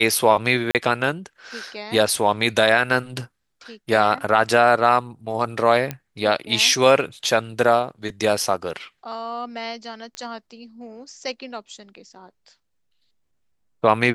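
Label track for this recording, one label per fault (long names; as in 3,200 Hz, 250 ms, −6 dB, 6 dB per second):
0.710000	0.750000	drop-out 38 ms
5.910000	5.910000	click −12 dBFS
10.150000	10.150000	click −18 dBFS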